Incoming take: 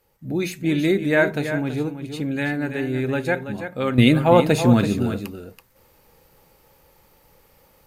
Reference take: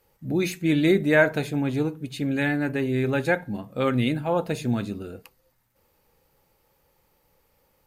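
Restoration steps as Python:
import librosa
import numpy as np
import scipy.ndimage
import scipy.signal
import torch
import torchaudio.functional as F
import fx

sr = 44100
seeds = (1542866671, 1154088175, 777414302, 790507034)

y = fx.fix_echo_inverse(x, sr, delay_ms=330, level_db=-9.5)
y = fx.gain(y, sr, db=fx.steps((0.0, 0.0), (3.98, -9.5)))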